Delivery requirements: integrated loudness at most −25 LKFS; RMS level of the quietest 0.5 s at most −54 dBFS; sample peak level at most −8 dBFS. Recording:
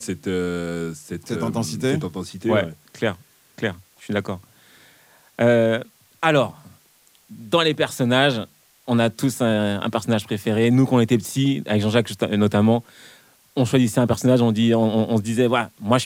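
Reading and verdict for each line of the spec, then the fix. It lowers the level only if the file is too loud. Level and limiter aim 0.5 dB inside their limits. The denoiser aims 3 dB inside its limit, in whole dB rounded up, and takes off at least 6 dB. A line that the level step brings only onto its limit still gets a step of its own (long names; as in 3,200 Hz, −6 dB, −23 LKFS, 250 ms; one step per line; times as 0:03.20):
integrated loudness −21.0 LKFS: out of spec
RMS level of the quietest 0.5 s −57 dBFS: in spec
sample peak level −3.0 dBFS: out of spec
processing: level −4.5 dB
brickwall limiter −8.5 dBFS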